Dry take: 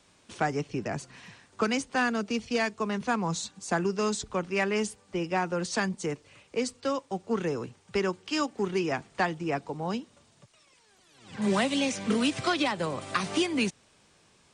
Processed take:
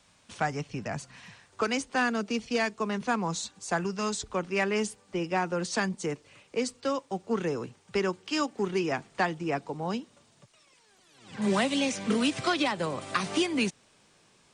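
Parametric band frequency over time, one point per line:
parametric band −9 dB 0.68 octaves
0:01.25 360 Hz
0:02.10 88 Hz
0:03.15 88 Hz
0:04.01 410 Hz
0:04.52 69 Hz

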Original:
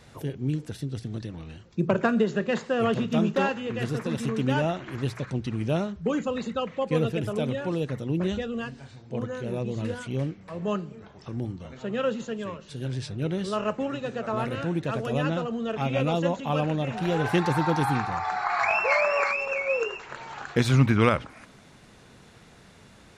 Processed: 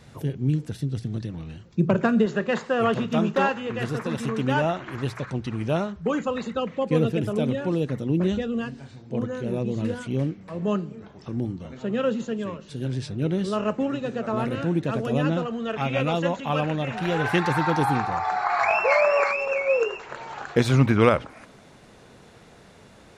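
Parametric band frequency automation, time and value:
parametric band +5.5 dB 1.7 octaves
150 Hz
from 0:02.26 1,100 Hz
from 0:06.57 250 Hz
from 0:15.43 1,800 Hz
from 0:17.77 540 Hz

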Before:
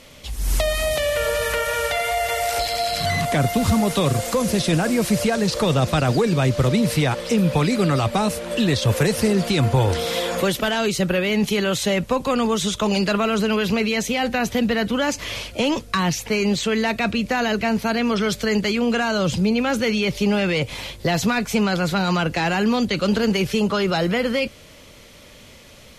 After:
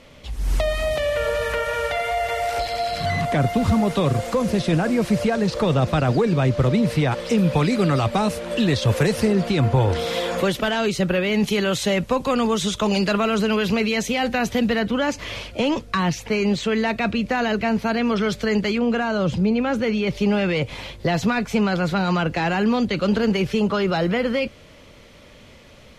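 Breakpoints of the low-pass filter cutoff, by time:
low-pass filter 6 dB per octave
2,300 Hz
from 0:07.12 4,900 Hz
from 0:09.25 2,400 Hz
from 0:09.96 4,200 Hz
from 0:11.34 7,700 Hz
from 0:14.79 3,100 Hz
from 0:18.78 1,600 Hz
from 0:20.07 2,800 Hz

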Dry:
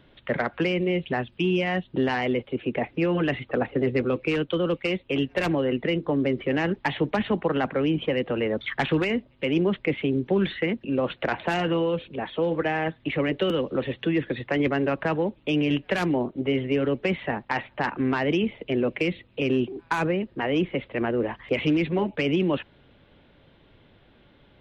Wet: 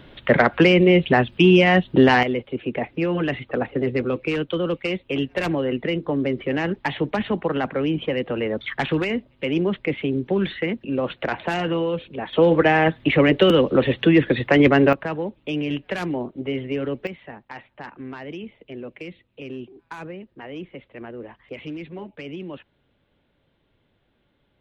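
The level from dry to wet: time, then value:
+10 dB
from 0:02.23 +1 dB
from 0:12.33 +9 dB
from 0:14.93 −2 dB
from 0:17.07 −11 dB

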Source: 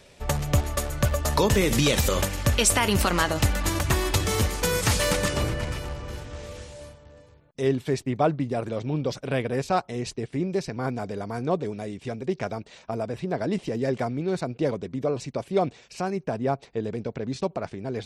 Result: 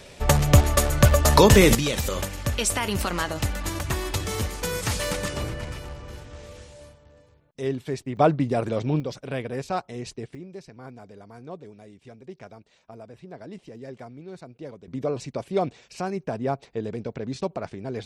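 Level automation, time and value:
+7 dB
from 0:01.75 −4 dB
from 0:08.17 +3.5 dB
from 0:09.00 −4 dB
from 0:10.35 −13.5 dB
from 0:14.88 −1 dB

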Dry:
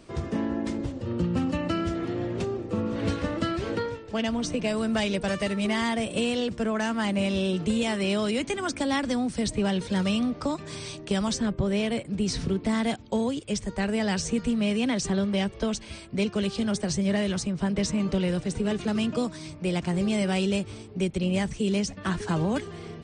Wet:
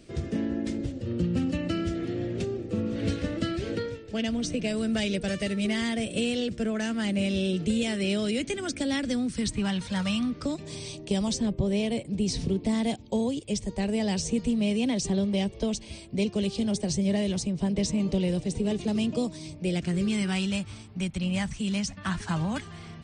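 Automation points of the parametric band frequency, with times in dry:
parametric band −14.5 dB 0.84 octaves
0:09.09 1,000 Hz
0:10.01 330 Hz
0:10.64 1,400 Hz
0:19.53 1,400 Hz
0:20.51 420 Hz

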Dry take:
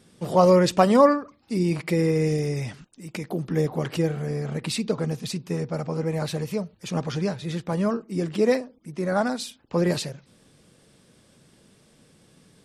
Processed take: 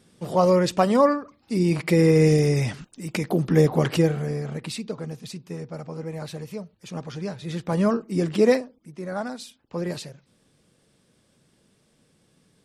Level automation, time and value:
0:01.07 −2 dB
0:02.23 +6 dB
0:03.87 +6 dB
0:04.89 −6.5 dB
0:07.16 −6.5 dB
0:07.80 +3 dB
0:08.48 +3 dB
0:08.96 −6.5 dB

